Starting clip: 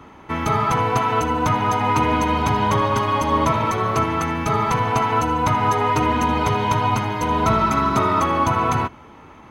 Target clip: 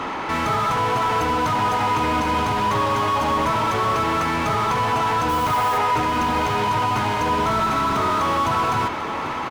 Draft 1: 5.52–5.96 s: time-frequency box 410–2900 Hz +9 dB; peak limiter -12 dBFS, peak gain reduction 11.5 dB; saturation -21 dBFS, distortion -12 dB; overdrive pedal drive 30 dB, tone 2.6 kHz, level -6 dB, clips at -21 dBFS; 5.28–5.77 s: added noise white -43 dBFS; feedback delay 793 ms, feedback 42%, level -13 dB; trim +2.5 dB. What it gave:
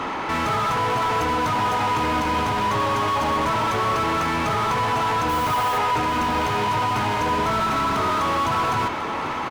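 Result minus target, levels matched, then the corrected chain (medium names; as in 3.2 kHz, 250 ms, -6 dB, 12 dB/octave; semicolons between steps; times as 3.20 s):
saturation: distortion +13 dB
5.52–5.96 s: time-frequency box 410–2900 Hz +9 dB; peak limiter -12 dBFS, peak gain reduction 11.5 dB; saturation -11.5 dBFS, distortion -24 dB; overdrive pedal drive 30 dB, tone 2.6 kHz, level -6 dB, clips at -21 dBFS; 5.28–5.77 s: added noise white -43 dBFS; feedback delay 793 ms, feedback 42%, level -13 dB; trim +2.5 dB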